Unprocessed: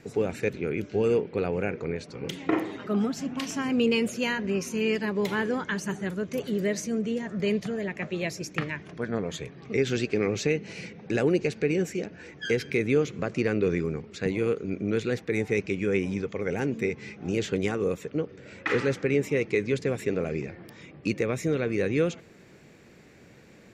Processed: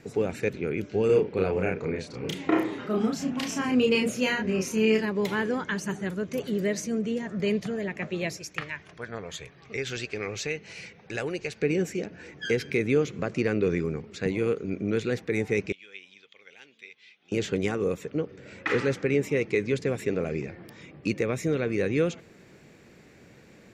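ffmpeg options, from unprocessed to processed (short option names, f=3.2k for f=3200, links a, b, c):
-filter_complex "[0:a]asettb=1/sr,asplit=3[a][b][c];[a]atrim=end=1.064[d];[b]atrim=start=1.06:end=5.05,asetpts=PTS-STARTPTS,afade=t=in:d=0.004:c=qsin,afade=t=out:st=3.986:d=0.004:c=qsin,asplit=2[e][f];[f]adelay=32,volume=-2.5dB[g];[e][g]amix=inputs=2:normalize=0,atrim=end_sample=175959[h];[c]atrim=start=5.046[i];[d][h]acrossfade=d=0.004:c1=hsin:c2=qsin[j];[j][i]acrossfade=d=0.004:c1=qsin:c2=hsin,asettb=1/sr,asplit=3[k][l][m];[k]atrim=end=8.374[n];[l]atrim=start=8.37:end=11.62,asetpts=PTS-STARTPTS,afade=t=in:d=0.004:c=qsin,afade=t=out:st=3.246:d=0.004:c=qsin,equalizer=f=240:t=o:w=2.2:g=-12.5[o];[m]atrim=start=11.616[p];[n][o]acrossfade=d=0.004:c1=hsin:c2=qsin[q];[q][p]acrossfade=d=0.004:c1=qsin:c2=hsin,asettb=1/sr,asplit=3[r][s][t];[r]atrim=end=15.724[u];[s]atrim=start=15.72:end=17.32,asetpts=PTS-STARTPTS,afade=t=in:d=0.004:c=qsin,afade=t=out:st=1.596:d=0.004:c=qsin,bandpass=f=3.4k:t=q:w=3.9[v];[t]atrim=start=17.316[w];[u][v]acrossfade=d=0.004:c1=hsin:c2=qsin[x];[x][w]acrossfade=d=0.004:c1=qsin:c2=hsin"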